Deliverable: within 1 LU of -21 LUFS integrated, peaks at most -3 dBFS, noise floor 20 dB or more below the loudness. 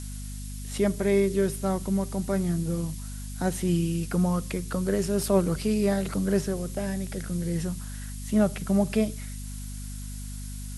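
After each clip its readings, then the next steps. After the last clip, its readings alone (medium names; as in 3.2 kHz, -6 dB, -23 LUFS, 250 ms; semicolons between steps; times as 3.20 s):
hum 50 Hz; highest harmonic 250 Hz; hum level -34 dBFS; noise floor -36 dBFS; noise floor target -48 dBFS; loudness -27.5 LUFS; peak level -9.5 dBFS; loudness target -21.0 LUFS
-> hum notches 50/100/150/200/250 Hz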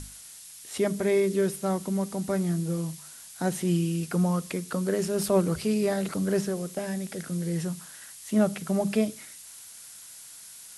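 hum not found; noise floor -46 dBFS; noise floor target -48 dBFS
-> noise reduction 6 dB, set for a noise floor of -46 dBFS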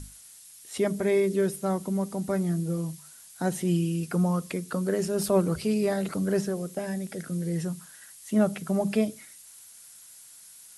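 noise floor -50 dBFS; loudness -28.0 LUFS; peak level -11.5 dBFS; loudness target -21.0 LUFS
-> trim +7 dB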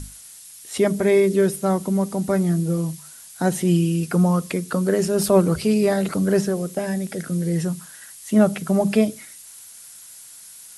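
loudness -21.0 LUFS; peak level -4.5 dBFS; noise floor -43 dBFS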